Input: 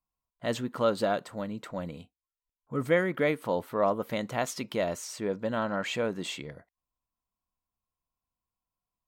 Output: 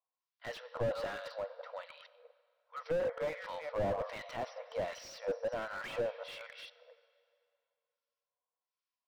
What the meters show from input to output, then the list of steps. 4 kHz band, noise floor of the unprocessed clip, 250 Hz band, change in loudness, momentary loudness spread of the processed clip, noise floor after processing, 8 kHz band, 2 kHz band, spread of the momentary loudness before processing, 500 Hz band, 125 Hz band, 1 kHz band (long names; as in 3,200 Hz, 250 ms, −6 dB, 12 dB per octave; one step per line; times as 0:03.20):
−9.0 dB, below −85 dBFS, −16.5 dB, −8.5 dB, 14 LU, below −85 dBFS, −15.0 dB, −9.0 dB, 11 LU, −7.0 dB, −10.5 dB, −9.0 dB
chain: delay that plays each chunk backwards 231 ms, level −11.5 dB
brick-wall band-pass 460–5,900 Hz
two-band tremolo in antiphase 1.3 Hz, depth 100%, crossover 1,200 Hz
dense smooth reverb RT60 2.5 s, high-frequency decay 0.8×, DRR 17 dB
slew-rate limiting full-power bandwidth 13 Hz
level +2 dB